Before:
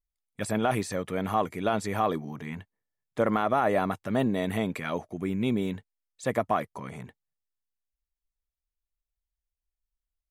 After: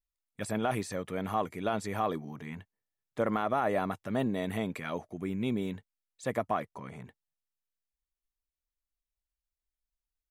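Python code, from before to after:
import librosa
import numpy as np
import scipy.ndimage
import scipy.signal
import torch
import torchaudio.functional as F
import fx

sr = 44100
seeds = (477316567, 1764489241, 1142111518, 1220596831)

y = fx.high_shelf(x, sr, hz=fx.line((6.5, 8200.0), (7.04, 4600.0)), db=-6.0, at=(6.5, 7.04), fade=0.02)
y = y * librosa.db_to_amplitude(-4.5)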